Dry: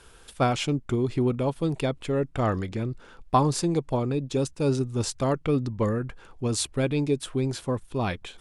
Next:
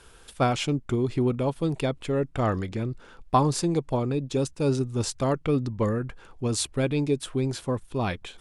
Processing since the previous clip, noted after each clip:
no processing that can be heard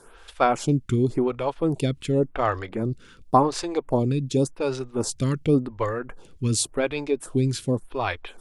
phaser with staggered stages 0.9 Hz
level +5.5 dB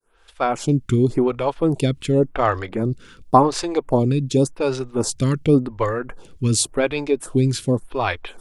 fade in at the beginning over 0.84 s
level +4.5 dB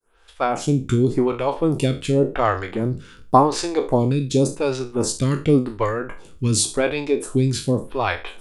peak hold with a decay on every bin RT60 0.31 s
level −1 dB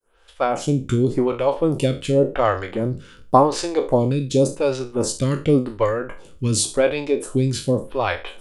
hollow resonant body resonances 550/3,000 Hz, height 7 dB, ringing for 30 ms
level −1 dB

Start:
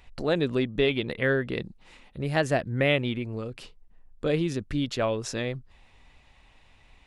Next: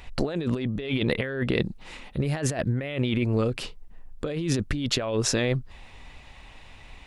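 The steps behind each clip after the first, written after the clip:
compressor whose output falls as the input rises −32 dBFS, ratio −1
level +5.5 dB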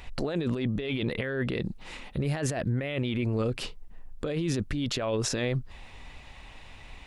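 brickwall limiter −19.5 dBFS, peak gain reduction 10 dB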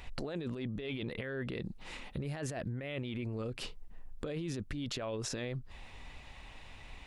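downward compressor 4 to 1, threshold −32 dBFS, peak gain reduction 7.5 dB
level −3.5 dB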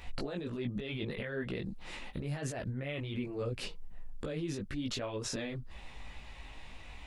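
multi-voice chorus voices 4, 1.1 Hz, delay 18 ms, depth 3.1 ms
level +4 dB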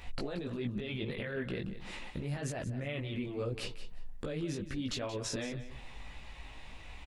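repeating echo 178 ms, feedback 18%, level −12.5 dB

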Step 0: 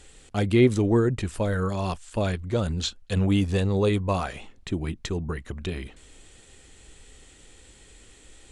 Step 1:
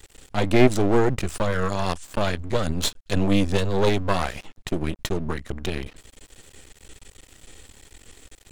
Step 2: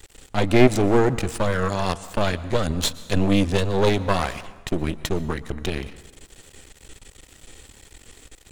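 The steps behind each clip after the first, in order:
dynamic equaliser 6,100 Hz, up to +3 dB, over −50 dBFS, Q 0.73; half-wave rectification; level +6.5 dB
dense smooth reverb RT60 1.2 s, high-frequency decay 0.65×, pre-delay 105 ms, DRR 16.5 dB; level +1.5 dB

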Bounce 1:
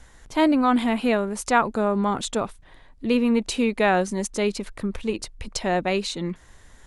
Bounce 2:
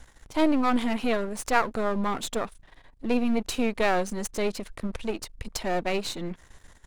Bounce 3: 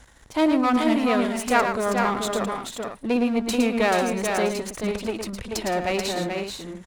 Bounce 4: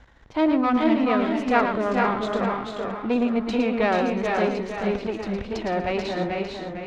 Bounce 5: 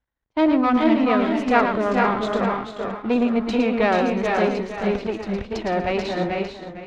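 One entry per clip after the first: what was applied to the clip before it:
gain on one half-wave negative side −12 dB
high-pass filter 56 Hz 6 dB per octave; on a send: multi-tap delay 112/434/495 ms −7/−5/−10 dB; on the sum: level +2.5 dB
high-frequency loss of the air 220 metres; feedback echo with a swinging delay time 455 ms, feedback 34%, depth 62 cents, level −6.5 dB
downward expander −27 dBFS; level +2.5 dB

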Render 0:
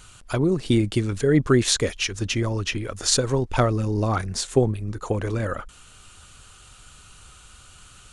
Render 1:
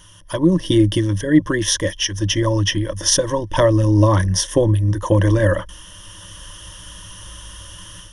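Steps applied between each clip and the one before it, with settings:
EQ curve with evenly spaced ripples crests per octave 1.2, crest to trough 18 dB
automatic gain control gain up to 9 dB
level −1 dB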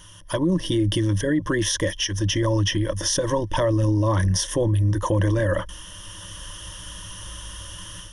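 brickwall limiter −13.5 dBFS, peak gain reduction 11.5 dB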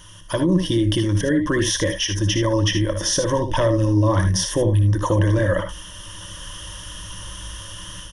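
parametric band 10,000 Hz −2 dB
on a send: ambience of single reflections 60 ms −10.5 dB, 76 ms −9 dB
on the sum: level +2 dB

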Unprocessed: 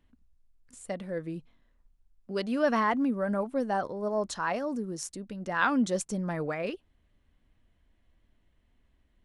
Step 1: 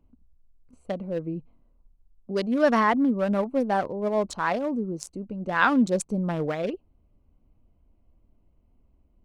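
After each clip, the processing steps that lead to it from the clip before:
adaptive Wiener filter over 25 samples
level +5.5 dB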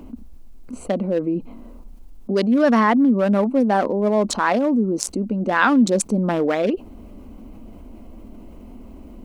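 low shelf with overshoot 180 Hz −6.5 dB, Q 3
envelope flattener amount 50%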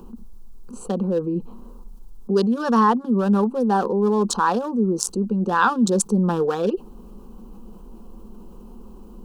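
phaser with its sweep stopped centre 420 Hz, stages 8
level +2 dB

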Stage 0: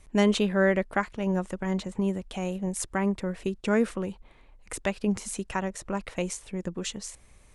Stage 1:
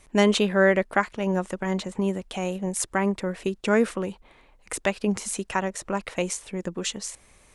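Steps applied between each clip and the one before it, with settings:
low-shelf EQ 160 Hz −10 dB
level +5 dB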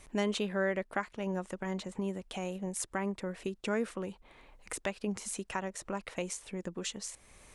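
downward compressor 1.5 to 1, threshold −50 dBFS, peak gain reduction 12.5 dB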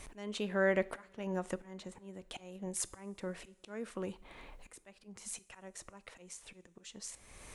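volume swells 765 ms
coupled-rooms reverb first 0.46 s, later 3.8 s, from −20 dB, DRR 16.5 dB
level +5 dB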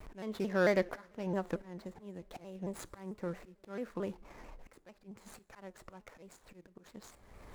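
running median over 15 samples
pitch modulation by a square or saw wave saw down 4.5 Hz, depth 160 cents
level +2 dB

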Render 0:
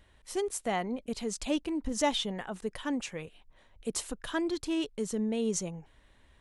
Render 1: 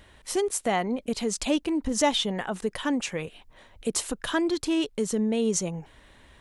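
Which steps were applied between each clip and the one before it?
low-shelf EQ 71 Hz −7 dB
in parallel at +2.5 dB: downward compressor, threshold −39 dBFS, peak gain reduction 15 dB
on the sum: level +3 dB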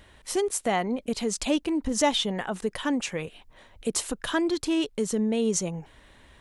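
no processing that can be heard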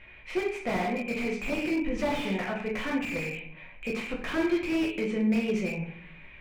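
low-pass with resonance 2,400 Hz, resonance Q 13
rectangular room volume 85 cubic metres, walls mixed, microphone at 0.93 metres
slew-rate limiting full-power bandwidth 90 Hz
level −6.5 dB

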